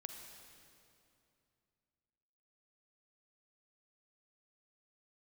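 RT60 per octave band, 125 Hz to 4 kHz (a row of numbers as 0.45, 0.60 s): 3.1, 3.0, 2.7, 2.6, 2.3, 2.2 s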